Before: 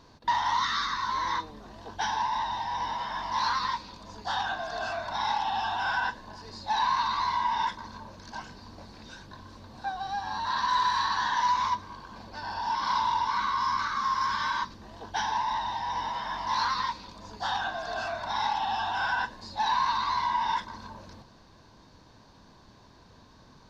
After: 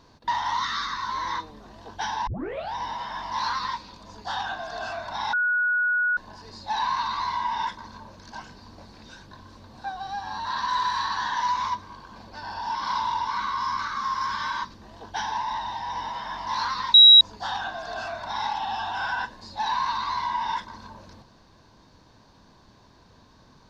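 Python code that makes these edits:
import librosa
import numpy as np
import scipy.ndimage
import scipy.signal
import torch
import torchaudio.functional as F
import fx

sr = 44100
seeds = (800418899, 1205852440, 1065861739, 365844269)

y = fx.edit(x, sr, fx.tape_start(start_s=2.27, length_s=0.47),
    fx.bleep(start_s=5.33, length_s=0.84, hz=1460.0, db=-20.0),
    fx.bleep(start_s=16.94, length_s=0.27, hz=3860.0, db=-7.5), tone=tone)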